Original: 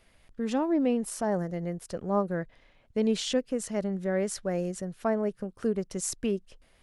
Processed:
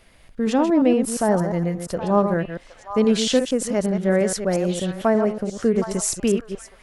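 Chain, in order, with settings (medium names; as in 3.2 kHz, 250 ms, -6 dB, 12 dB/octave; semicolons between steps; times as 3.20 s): chunks repeated in reverse 117 ms, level -8 dB; repeats whose band climbs or falls 767 ms, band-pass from 1.1 kHz, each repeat 1.4 oct, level -7.5 dB; trim +8.5 dB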